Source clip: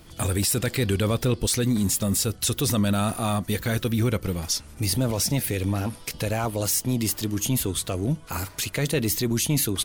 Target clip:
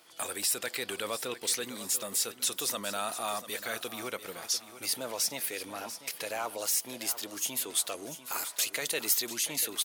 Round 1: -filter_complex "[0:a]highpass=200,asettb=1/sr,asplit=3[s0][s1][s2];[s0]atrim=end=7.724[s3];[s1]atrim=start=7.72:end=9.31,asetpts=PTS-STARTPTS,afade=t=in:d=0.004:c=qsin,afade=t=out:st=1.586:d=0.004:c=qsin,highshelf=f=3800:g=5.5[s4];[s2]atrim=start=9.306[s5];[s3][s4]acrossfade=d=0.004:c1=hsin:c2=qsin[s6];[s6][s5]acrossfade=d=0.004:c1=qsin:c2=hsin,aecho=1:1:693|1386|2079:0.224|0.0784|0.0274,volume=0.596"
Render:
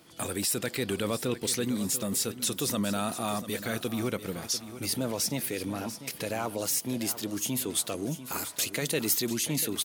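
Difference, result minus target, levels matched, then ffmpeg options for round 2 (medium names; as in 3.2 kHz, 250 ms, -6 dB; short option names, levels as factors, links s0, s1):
250 Hz band +11.5 dB
-filter_complex "[0:a]highpass=600,asettb=1/sr,asplit=3[s0][s1][s2];[s0]atrim=end=7.724[s3];[s1]atrim=start=7.72:end=9.31,asetpts=PTS-STARTPTS,afade=t=in:d=0.004:c=qsin,afade=t=out:st=1.586:d=0.004:c=qsin,highshelf=f=3800:g=5.5[s4];[s2]atrim=start=9.306[s5];[s3][s4]acrossfade=d=0.004:c1=hsin:c2=qsin[s6];[s6][s5]acrossfade=d=0.004:c1=qsin:c2=hsin,aecho=1:1:693|1386|2079:0.224|0.0784|0.0274,volume=0.596"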